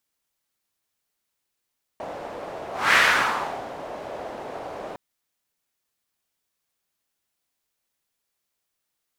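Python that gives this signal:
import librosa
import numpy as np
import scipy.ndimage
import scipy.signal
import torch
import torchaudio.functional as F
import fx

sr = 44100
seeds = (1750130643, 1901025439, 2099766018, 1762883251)

y = fx.whoosh(sr, seeds[0], length_s=2.96, peak_s=0.95, rise_s=0.26, fall_s=0.79, ends_hz=630.0, peak_hz=1800.0, q=2.1, swell_db=18.0)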